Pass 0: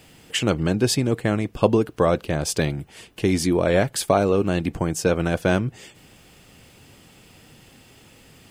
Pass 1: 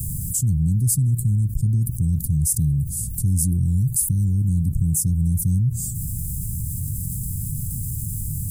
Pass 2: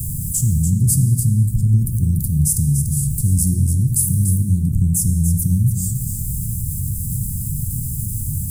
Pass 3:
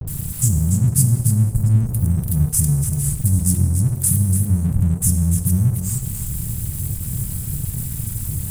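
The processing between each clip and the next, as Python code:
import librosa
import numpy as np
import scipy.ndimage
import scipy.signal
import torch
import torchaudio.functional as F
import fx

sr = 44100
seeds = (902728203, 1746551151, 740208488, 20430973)

y1 = scipy.signal.sosfilt(scipy.signal.cheby2(4, 80, [620.0, 2400.0], 'bandstop', fs=sr, output='sos'), x)
y1 = fx.env_flatten(y1, sr, amount_pct=70)
y1 = y1 * librosa.db_to_amplitude(7.0)
y2 = y1 + 10.0 ** (-8.0 / 20.0) * np.pad(y1, (int(290 * sr / 1000.0), 0))[:len(y1)]
y2 = fx.rev_plate(y2, sr, seeds[0], rt60_s=1.5, hf_ratio=0.75, predelay_ms=0, drr_db=6.0)
y2 = y2 * librosa.db_to_amplitude(2.5)
y3 = fx.dispersion(y2, sr, late='highs', ms=75.0, hz=420.0)
y3 = np.sign(y3) * np.maximum(np.abs(y3) - 10.0 ** (-35.0 / 20.0), 0.0)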